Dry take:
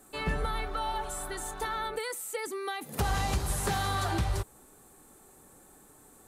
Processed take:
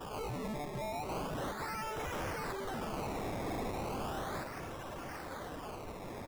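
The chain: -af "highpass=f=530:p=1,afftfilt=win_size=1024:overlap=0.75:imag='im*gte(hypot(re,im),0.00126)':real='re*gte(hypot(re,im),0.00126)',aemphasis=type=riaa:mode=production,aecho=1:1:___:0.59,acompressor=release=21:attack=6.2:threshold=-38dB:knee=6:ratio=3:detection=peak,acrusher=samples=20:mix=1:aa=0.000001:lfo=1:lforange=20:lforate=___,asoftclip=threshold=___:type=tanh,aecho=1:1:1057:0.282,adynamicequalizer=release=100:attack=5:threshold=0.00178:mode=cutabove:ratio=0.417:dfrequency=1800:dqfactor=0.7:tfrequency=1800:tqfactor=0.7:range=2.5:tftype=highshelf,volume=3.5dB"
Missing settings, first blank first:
4.7, 0.36, -38.5dB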